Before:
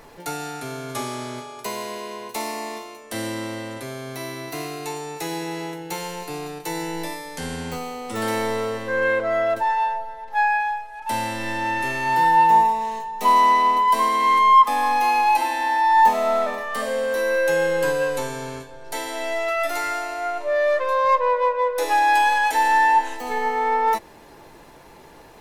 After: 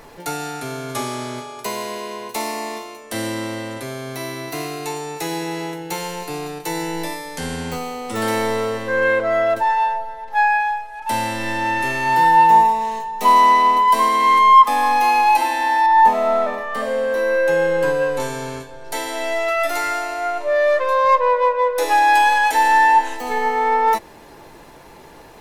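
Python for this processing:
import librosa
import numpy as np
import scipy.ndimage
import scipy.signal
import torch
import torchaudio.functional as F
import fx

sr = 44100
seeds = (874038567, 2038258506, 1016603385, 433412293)

y = fx.high_shelf(x, sr, hz=3200.0, db=-10.0, at=(15.86, 18.2))
y = y * 10.0 ** (3.5 / 20.0)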